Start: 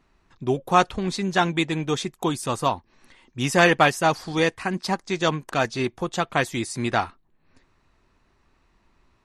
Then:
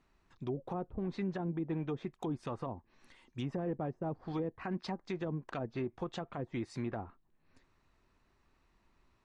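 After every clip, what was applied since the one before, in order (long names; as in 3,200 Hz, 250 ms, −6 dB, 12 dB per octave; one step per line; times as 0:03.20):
treble cut that deepens with the level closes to 430 Hz, closed at −18.5 dBFS
brickwall limiter −20.5 dBFS, peak gain reduction 11 dB
level −8 dB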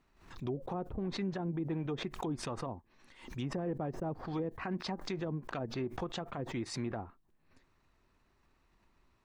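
background raised ahead of every attack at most 100 dB per second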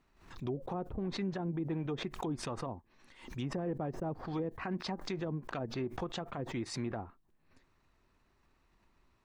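no processing that can be heard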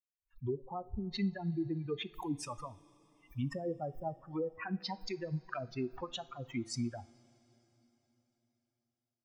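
spectral dynamics exaggerated over time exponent 3
coupled-rooms reverb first 0.34 s, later 4.1 s, from −18 dB, DRR 14 dB
level +6 dB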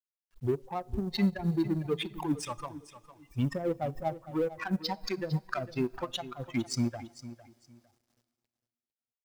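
mu-law and A-law mismatch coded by A
repeating echo 454 ms, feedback 23%, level −15 dB
level +8.5 dB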